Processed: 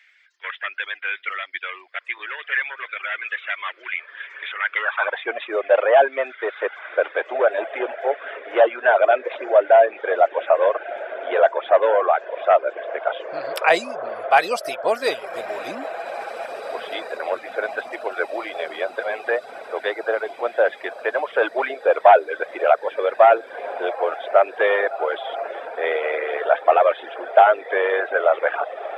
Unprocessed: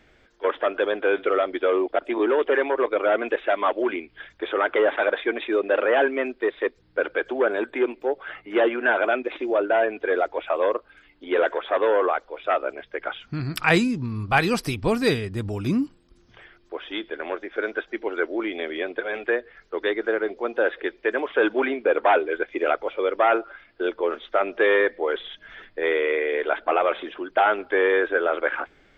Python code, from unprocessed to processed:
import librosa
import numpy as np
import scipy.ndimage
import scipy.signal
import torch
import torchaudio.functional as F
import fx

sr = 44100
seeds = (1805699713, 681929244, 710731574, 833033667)

y = fx.filter_sweep_highpass(x, sr, from_hz=2000.0, to_hz=640.0, start_s=4.62, end_s=5.32, q=3.1)
y = fx.echo_diffused(y, sr, ms=1929, feedback_pct=70, wet_db=-12)
y = fx.dereverb_blind(y, sr, rt60_s=0.59)